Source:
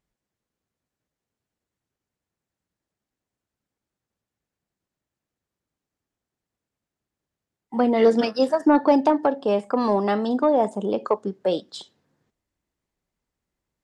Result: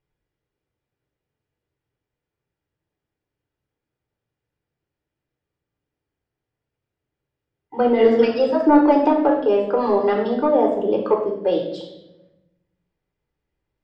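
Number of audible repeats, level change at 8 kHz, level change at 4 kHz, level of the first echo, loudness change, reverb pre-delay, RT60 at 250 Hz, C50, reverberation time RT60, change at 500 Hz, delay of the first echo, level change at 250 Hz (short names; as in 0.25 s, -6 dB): none, n/a, -1.0 dB, none, +3.5 dB, 3 ms, 1.3 s, 5.5 dB, 0.90 s, +4.0 dB, none, +2.5 dB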